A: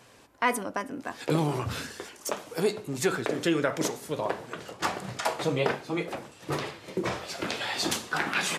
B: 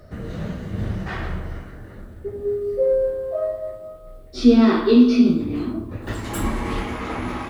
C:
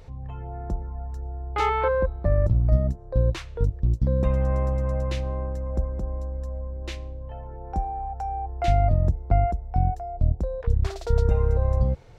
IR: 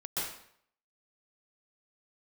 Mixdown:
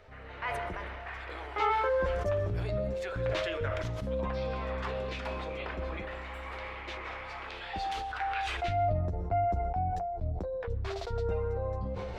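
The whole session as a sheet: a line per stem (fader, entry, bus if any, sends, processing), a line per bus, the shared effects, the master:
-7.5 dB, 0.00 s, send -16.5 dB, HPF 1500 Hz 6 dB/oct
-7.5 dB, 0.00 s, send -9 dB, HPF 720 Hz 12 dB/oct; bell 2300 Hz +7.5 dB 0.44 oct; compressor 6:1, threshold -35 dBFS, peak gain reduction 14 dB
-2.0 dB, 0.00 s, send -24 dB, flange 1.8 Hz, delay 9.7 ms, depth 1.5 ms, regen -11%; tone controls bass +7 dB, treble +10 dB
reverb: on, RT60 0.65 s, pre-delay 0.117 s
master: three-band isolator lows -16 dB, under 320 Hz, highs -23 dB, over 3600 Hz; sustainer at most 20 dB/s

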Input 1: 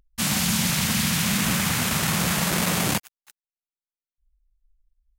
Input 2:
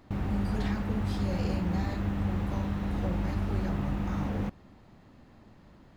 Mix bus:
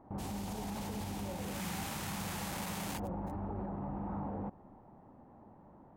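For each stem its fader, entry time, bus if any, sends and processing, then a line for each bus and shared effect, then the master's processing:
1.35 s -19.5 dB -> 1.63 s -8 dB, 0.00 s, no send, dry
0.0 dB, 0.00 s, no send, Chebyshev low-pass 820 Hz, order 2; low shelf 84 Hz -12 dB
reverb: off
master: bell 860 Hz +7.5 dB 0.5 oct; hard clip -21.5 dBFS, distortion -25 dB; limiter -32 dBFS, peak gain reduction 10.5 dB

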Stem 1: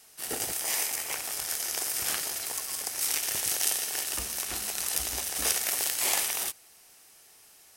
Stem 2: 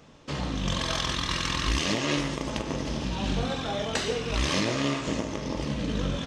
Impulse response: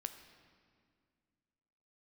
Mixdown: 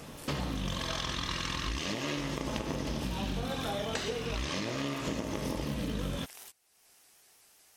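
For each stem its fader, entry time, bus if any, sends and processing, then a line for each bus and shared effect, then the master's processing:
-18.0 dB, 0.00 s, no send, upward compressor, threshold -32 dBFS; shaped vibrato saw up 5.4 Hz, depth 160 cents
+2.0 dB, 0.00 s, no send, dry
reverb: off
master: vocal rider within 5 dB 0.5 s; high shelf 11000 Hz -4 dB; compressor, threshold -31 dBFS, peak gain reduction 10 dB

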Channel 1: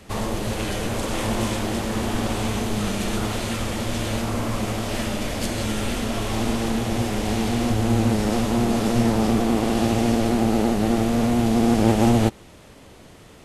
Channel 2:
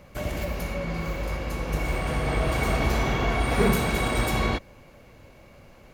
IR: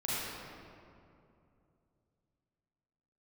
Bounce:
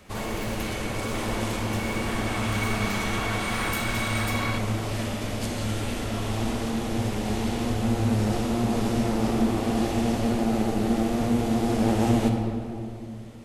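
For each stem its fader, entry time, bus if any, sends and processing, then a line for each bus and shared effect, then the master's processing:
-8.5 dB, 0.00 s, send -7 dB, dry
-2.0 dB, 0.00 s, send -13 dB, Chebyshev high-pass 1200 Hz, order 2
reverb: on, RT60 2.6 s, pre-delay 34 ms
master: dry

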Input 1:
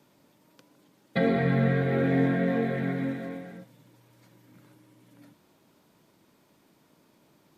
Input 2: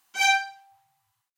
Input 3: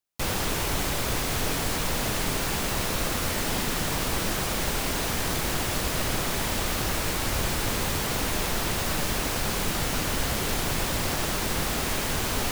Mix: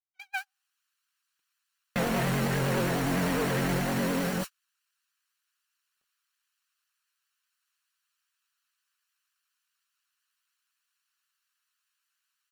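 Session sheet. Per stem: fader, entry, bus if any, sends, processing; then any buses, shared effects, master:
+2.5 dB, 0.80 s, bus A, no send, fuzz box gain 44 dB, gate -46 dBFS; flange 0.59 Hz, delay 4.8 ms, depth 1.9 ms, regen -30%
-3.5 dB, 0.00 s, bus A, no send, tilt shelf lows -6.5 dB, about 1300 Hz; negative-ratio compressor -21 dBFS, ratio -0.5
-14.0 dB, 0.00 s, no bus, no send, minimum comb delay 0.7 ms; HPF 1300 Hz 24 dB/oct; AGC gain up to 12 dB
bus A: 0.0 dB, LPF 2900 Hz 12 dB/oct; compressor 16:1, threshold -19 dBFS, peak gain reduction 7 dB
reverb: off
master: gate -25 dBFS, range -47 dB; vibrato 9.8 Hz 75 cents; limiter -21 dBFS, peak gain reduction 8.5 dB

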